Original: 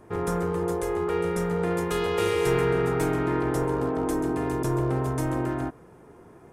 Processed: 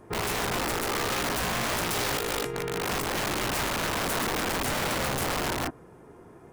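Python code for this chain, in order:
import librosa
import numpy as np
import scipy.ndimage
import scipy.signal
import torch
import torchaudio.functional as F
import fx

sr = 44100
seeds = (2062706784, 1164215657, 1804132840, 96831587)

y = fx.over_compress(x, sr, threshold_db=-26.0, ratio=-0.5, at=(1.89, 3.48), fade=0.02)
y = (np.mod(10.0 ** (23.5 / 20.0) * y + 1.0, 2.0) - 1.0) / 10.0 ** (23.5 / 20.0)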